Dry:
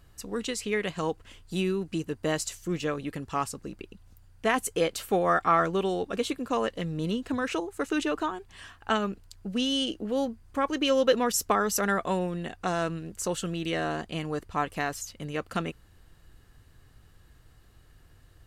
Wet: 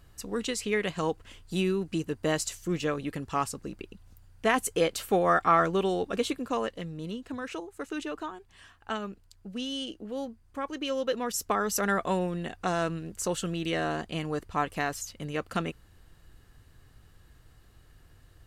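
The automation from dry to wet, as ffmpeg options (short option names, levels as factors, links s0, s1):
-af "volume=2.37,afade=t=out:st=6.22:d=0.75:silence=0.421697,afade=t=in:st=11.14:d=0.86:silence=0.446684"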